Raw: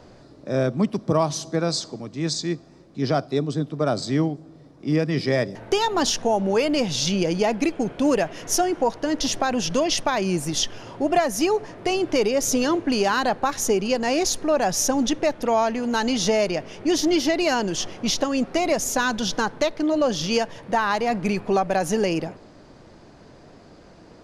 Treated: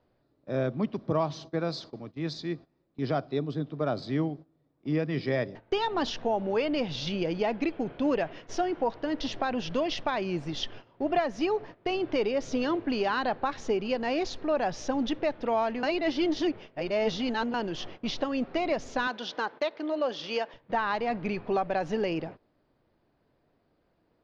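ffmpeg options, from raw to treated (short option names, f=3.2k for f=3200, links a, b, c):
-filter_complex "[0:a]asettb=1/sr,asplit=3[a][b][c];[a]atrim=end=19.074[d];[b]atrim=start=19.07:end=20.54,asetpts=PTS-STARTPTS,afade=t=in:d=0.004:c=qsin,afade=t=out:st=1.466:d=0.004:c=qsin,highpass=360[e];[c]atrim=start=20.536[f];[d][e]acrossfade=d=0.004:c1=hsin:c2=qsin[g];[g][f]acrossfade=d=0.004:c1=qsin:c2=hsin,asplit=3[h][i][j];[h]atrim=end=15.832[k];[i]atrim=start=15.828:end=17.542,asetpts=PTS-STARTPTS,areverse[l];[j]atrim=start=17.538[m];[k][l]acrossfade=d=0.004:c1=hsin:c2=hsin[n];[n][m]acrossfade=d=0.004:c1=hsin:c2=hsin,agate=range=-16dB:threshold=-35dB:ratio=16:detection=peak,lowpass=f=4.1k:w=0.5412,lowpass=f=4.1k:w=1.3066,equalizer=f=190:w=6.3:g=-4,volume=-6.5dB"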